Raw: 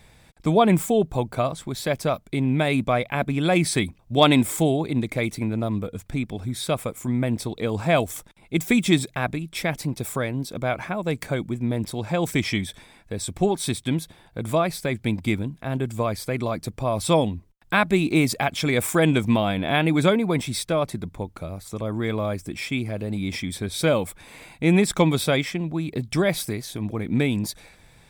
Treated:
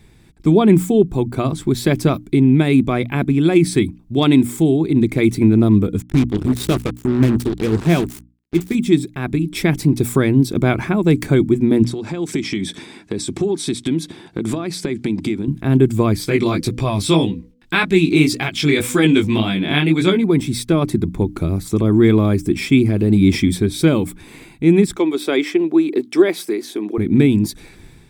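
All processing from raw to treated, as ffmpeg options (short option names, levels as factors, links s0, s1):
-filter_complex "[0:a]asettb=1/sr,asplit=3[s0][s1][s2];[s0]atrim=end=6.024[s3];[s1]atrim=start=6.02:end=8.75,asetpts=PTS-STARTPTS,afade=t=in:d=0.004:c=qsin,afade=t=out:st=2.726:d=0.004:c=qsin,flanger=delay=5.2:depth=6.4:regen=60:speed=1:shape=sinusoidal,aeval=exprs='val(0)+0.01*(sin(2*PI*60*n/s)+sin(2*PI*2*60*n/s)/2+sin(2*PI*3*60*n/s)/3+sin(2*PI*4*60*n/s)/4+sin(2*PI*5*60*n/s)/5)':c=same,acrusher=bits=4:mix=0:aa=0.5[s4];[s2]atrim=start=8.746[s5];[s3][s4]acrossfade=d=0.004:c1=hsin:c2=qsin[s6];[s6][s5]acrossfade=d=0.004:c1=qsin:c2=hsin,asettb=1/sr,asplit=3[s7][s8][s9];[s7]atrim=end=11.834[s10];[s8]atrim=start=11.83:end=15.48,asetpts=PTS-STARTPTS,afade=t=in:d=0.004:c=qsin,afade=t=out:st=3.646:d=0.004:c=qsin,highpass=170,lowpass=7000,bass=f=250:g=-1,treble=f=4000:g=4,acompressor=threshold=0.02:ratio=6:attack=3.2:release=140:knee=1:detection=peak[s11];[s9]atrim=start=15.476[s12];[s10][s11]acrossfade=d=0.004:c1=hsin:c2=qsin[s13];[s13][s12]acrossfade=d=0.004:c1=qsin:c2=hsin,asettb=1/sr,asplit=3[s14][s15][s16];[s14]atrim=end=16.214[s17];[s15]atrim=start=16.21:end=20.24,asetpts=PTS-STARTPTS,afade=t=in:d=0.004:c=qsin,afade=t=out:st=4.026:d=0.004:c=qsin,equalizer=f=3500:t=o:w=2.6:g=9,bandreject=f=246.3:t=h:w=4,bandreject=f=492.6:t=h:w=4,flanger=delay=16:depth=4.5:speed=1.8[s18];[s16]atrim=start=20.236[s19];[s17][s18]acrossfade=d=0.004:c1=hsin:c2=qsin[s20];[s20][s19]acrossfade=d=0.004:c1=qsin:c2=hsin,asettb=1/sr,asplit=3[s21][s22][s23];[s21]atrim=end=24.964[s24];[s22]atrim=start=24.96:end=26.98,asetpts=PTS-STARTPTS,afade=t=in:d=0.004:c=qsin,afade=t=out:st=2.016:d=0.004:c=qsin,highpass=f=320:w=0.5412,highpass=f=320:w=1.3066,highshelf=f=4500:g=-6.5[s25];[s23]atrim=start=26.976[s26];[s24][s25]acrossfade=d=0.004:c1=hsin:c2=qsin[s27];[s27][s26]acrossfade=d=0.004:c1=qsin:c2=hsin,lowshelf=f=450:t=q:w=3:g=6.5,bandreject=f=60:t=h:w=6,bandreject=f=120:t=h:w=6,bandreject=f=180:t=h:w=6,bandreject=f=240:t=h:w=6,bandreject=f=300:t=h:w=6,dynaudnorm=f=140:g=5:m=3.76,volume=0.891"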